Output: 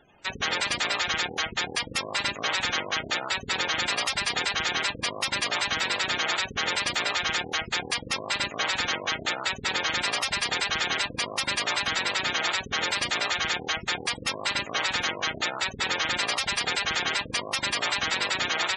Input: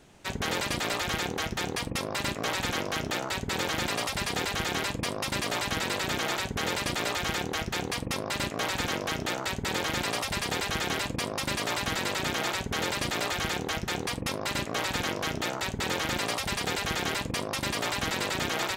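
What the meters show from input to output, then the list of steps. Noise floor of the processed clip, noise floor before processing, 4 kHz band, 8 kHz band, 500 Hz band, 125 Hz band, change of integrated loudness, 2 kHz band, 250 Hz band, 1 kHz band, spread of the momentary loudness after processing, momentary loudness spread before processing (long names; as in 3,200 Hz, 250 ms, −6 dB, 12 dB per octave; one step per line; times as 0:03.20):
−43 dBFS, −39 dBFS, +5.5 dB, +1.5 dB, −2.5 dB, −7.0 dB, +3.5 dB, +5.0 dB, −5.5 dB, +2.0 dB, 3 LU, 2 LU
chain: gate on every frequency bin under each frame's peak −15 dB strong
tilt shelving filter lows −7.5 dB, about 720 Hz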